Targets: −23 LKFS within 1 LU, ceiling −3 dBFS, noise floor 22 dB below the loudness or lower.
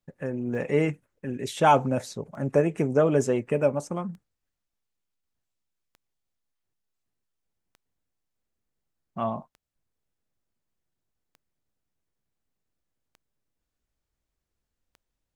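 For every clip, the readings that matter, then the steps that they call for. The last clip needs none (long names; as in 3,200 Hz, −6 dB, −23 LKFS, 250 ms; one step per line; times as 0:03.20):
number of clicks 9; integrated loudness −26.0 LKFS; sample peak −7.0 dBFS; target loudness −23.0 LKFS
→ click removal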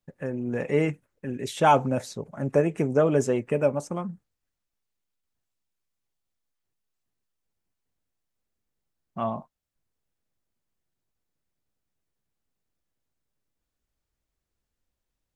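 number of clicks 0; integrated loudness −26.0 LKFS; sample peak −7.0 dBFS; target loudness −23.0 LKFS
→ level +3 dB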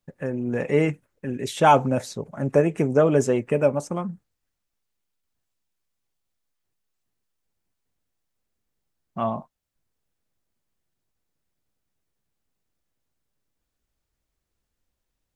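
integrated loudness −23.0 LKFS; sample peak −4.0 dBFS; background noise floor −81 dBFS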